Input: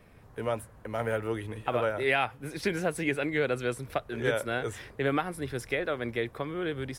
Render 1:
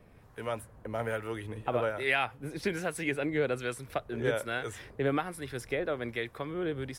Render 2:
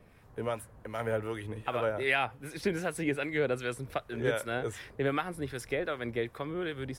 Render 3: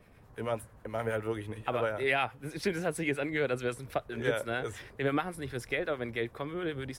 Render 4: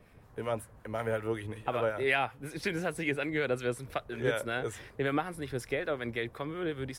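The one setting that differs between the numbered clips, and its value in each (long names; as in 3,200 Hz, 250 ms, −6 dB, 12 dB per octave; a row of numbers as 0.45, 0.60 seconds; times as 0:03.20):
two-band tremolo in antiphase, speed: 1.2, 2.6, 9.3, 5.4 Hertz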